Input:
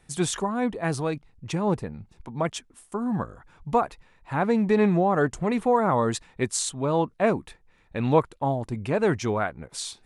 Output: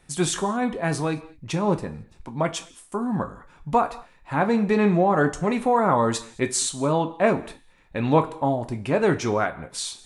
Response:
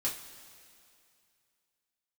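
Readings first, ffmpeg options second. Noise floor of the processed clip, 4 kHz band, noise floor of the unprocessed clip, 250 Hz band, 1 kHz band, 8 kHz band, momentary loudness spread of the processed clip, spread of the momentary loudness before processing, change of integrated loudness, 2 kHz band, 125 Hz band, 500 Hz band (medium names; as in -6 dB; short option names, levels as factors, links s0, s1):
-55 dBFS, +3.5 dB, -61 dBFS, +2.0 dB, +3.0 dB, +3.5 dB, 13 LU, 13 LU, +2.0 dB, +3.5 dB, +1.5 dB, +1.5 dB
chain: -filter_complex "[0:a]asplit=2[s0][s1];[s1]lowshelf=f=170:g=-9[s2];[1:a]atrim=start_sample=2205,afade=t=out:st=0.28:d=0.01,atrim=end_sample=12789[s3];[s2][s3]afir=irnorm=-1:irlink=0,volume=0.473[s4];[s0][s4]amix=inputs=2:normalize=0"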